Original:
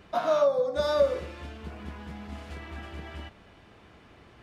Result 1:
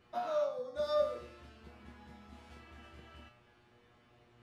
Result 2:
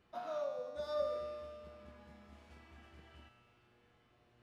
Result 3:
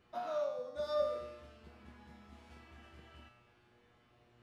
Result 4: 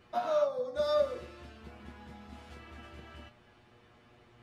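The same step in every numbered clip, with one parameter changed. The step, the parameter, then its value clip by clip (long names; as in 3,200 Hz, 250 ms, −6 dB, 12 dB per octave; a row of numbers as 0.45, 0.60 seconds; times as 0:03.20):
tuned comb filter, decay: 0.46, 2.1, 0.95, 0.15 seconds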